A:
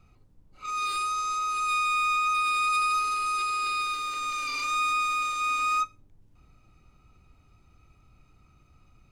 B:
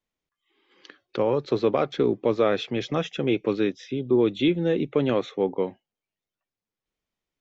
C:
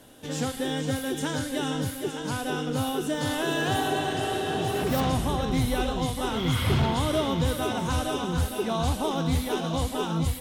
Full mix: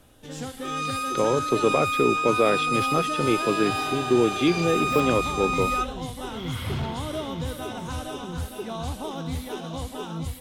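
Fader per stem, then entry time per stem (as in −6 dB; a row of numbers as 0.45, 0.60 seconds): −0.5, 0.0, −5.5 decibels; 0.00, 0.00, 0.00 seconds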